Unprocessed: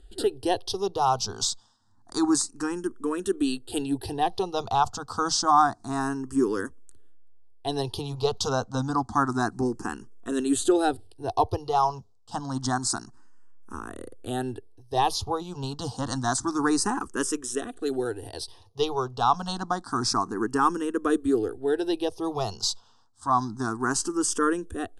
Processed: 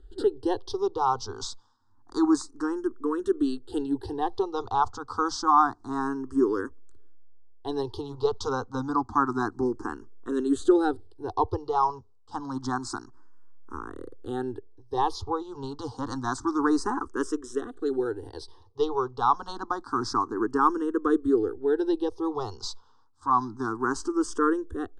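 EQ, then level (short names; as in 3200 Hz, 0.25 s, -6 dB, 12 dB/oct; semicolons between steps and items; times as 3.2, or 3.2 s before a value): air absorption 78 m; high shelf 5200 Hz -9.5 dB; fixed phaser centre 640 Hz, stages 6; +2.0 dB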